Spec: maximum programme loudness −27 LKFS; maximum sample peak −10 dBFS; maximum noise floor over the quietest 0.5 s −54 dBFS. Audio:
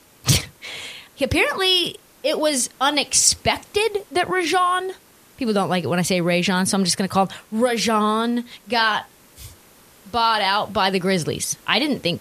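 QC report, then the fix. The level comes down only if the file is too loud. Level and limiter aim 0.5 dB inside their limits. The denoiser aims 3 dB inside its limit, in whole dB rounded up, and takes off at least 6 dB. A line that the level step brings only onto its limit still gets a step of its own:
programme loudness −20.0 LKFS: out of spec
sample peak −1.5 dBFS: out of spec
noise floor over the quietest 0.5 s −50 dBFS: out of spec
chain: level −7.5 dB
brickwall limiter −10.5 dBFS

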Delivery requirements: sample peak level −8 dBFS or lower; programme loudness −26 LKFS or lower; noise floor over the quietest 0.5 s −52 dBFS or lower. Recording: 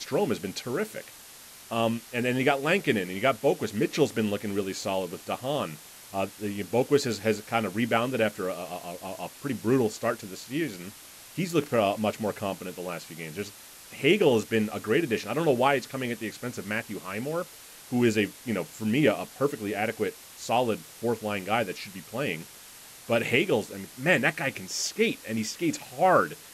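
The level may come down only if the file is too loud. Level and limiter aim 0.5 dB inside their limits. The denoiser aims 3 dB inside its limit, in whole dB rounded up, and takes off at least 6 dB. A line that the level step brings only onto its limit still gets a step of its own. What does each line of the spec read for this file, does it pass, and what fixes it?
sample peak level −9.0 dBFS: in spec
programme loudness −28.0 LKFS: in spec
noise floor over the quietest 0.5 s −48 dBFS: out of spec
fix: broadband denoise 7 dB, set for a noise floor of −48 dBFS

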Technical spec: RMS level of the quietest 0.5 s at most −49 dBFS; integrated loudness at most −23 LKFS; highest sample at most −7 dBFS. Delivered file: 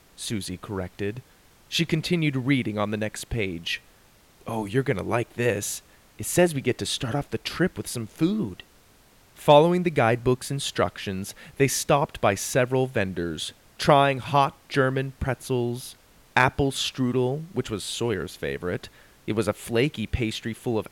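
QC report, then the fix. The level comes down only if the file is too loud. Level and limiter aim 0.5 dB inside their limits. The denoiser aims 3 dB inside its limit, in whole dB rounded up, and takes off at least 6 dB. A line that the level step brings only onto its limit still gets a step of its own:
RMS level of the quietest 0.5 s −56 dBFS: in spec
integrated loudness −25.5 LKFS: in spec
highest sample −5.0 dBFS: out of spec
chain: brickwall limiter −7.5 dBFS

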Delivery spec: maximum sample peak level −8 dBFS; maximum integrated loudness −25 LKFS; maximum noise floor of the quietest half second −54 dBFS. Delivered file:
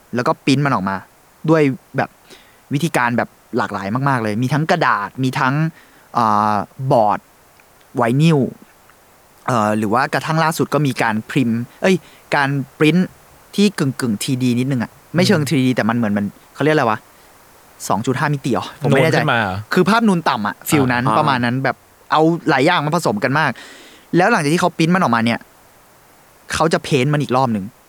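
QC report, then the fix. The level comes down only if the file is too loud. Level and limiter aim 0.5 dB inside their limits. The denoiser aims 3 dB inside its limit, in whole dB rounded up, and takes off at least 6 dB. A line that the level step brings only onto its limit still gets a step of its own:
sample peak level −2.5 dBFS: out of spec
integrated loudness −17.5 LKFS: out of spec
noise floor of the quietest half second −49 dBFS: out of spec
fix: level −8 dB

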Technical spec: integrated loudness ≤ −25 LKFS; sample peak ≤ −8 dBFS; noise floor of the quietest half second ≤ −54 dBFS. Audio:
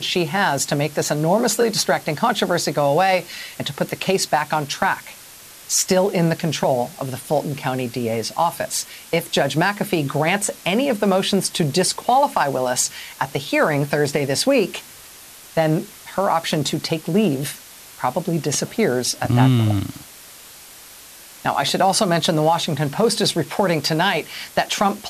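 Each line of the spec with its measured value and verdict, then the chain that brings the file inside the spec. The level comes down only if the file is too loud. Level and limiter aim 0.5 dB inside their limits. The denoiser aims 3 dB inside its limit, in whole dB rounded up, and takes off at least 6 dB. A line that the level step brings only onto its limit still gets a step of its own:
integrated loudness −20.0 LKFS: out of spec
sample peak −4.0 dBFS: out of spec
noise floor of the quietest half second −42 dBFS: out of spec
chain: broadband denoise 10 dB, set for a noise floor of −42 dBFS
level −5.5 dB

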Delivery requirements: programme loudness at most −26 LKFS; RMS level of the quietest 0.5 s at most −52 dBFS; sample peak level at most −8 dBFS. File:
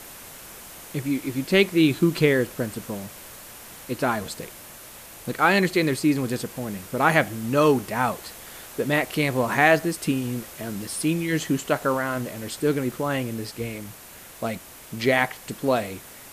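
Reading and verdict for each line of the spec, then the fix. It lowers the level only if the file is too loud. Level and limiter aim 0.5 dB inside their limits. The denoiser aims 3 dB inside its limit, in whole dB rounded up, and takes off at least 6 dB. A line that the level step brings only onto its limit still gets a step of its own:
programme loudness −24.0 LKFS: out of spec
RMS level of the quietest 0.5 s −44 dBFS: out of spec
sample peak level −4.5 dBFS: out of spec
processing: broadband denoise 9 dB, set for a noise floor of −44 dBFS
level −2.5 dB
brickwall limiter −8.5 dBFS

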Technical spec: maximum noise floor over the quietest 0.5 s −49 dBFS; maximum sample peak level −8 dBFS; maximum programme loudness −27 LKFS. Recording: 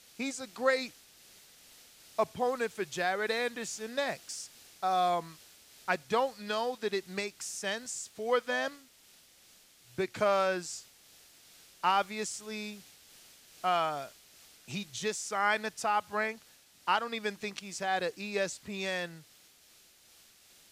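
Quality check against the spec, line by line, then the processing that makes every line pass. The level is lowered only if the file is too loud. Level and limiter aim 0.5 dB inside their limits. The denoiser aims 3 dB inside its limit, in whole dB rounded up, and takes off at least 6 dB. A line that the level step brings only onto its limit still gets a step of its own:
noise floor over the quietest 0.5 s −61 dBFS: in spec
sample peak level −13.5 dBFS: in spec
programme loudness −33.0 LKFS: in spec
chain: no processing needed

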